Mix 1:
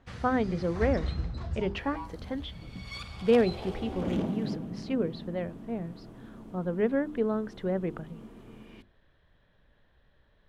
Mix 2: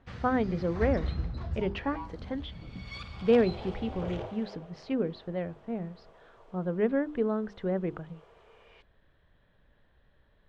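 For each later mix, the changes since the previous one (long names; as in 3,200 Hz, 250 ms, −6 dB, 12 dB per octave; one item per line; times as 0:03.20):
second sound: add Butterworth high-pass 440 Hz 48 dB per octave
master: add high-frequency loss of the air 100 metres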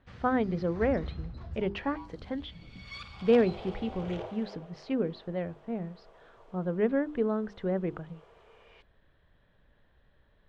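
first sound −6.5 dB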